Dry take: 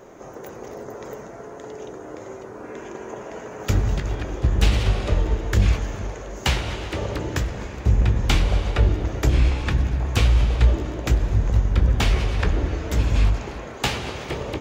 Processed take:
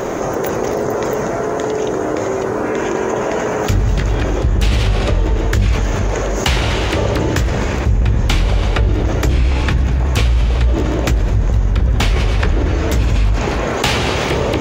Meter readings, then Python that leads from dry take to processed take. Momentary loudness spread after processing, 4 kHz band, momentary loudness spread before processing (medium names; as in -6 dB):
3 LU, +7.5 dB, 17 LU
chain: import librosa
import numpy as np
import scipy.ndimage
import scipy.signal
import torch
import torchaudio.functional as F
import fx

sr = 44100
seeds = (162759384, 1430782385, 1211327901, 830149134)

y = fx.env_flatten(x, sr, amount_pct=70)